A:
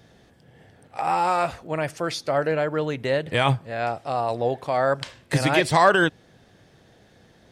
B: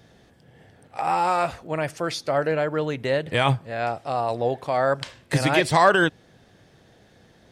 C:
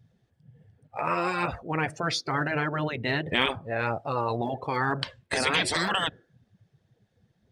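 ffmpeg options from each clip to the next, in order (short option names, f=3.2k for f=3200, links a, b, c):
-af anull
-af "afftdn=nr=22:nf=-40,aphaser=in_gain=1:out_gain=1:delay=2.9:decay=0.26:speed=2:type=triangular,afftfilt=real='re*lt(hypot(re,im),0.282)':imag='im*lt(hypot(re,im),0.282)':win_size=1024:overlap=0.75,volume=2dB"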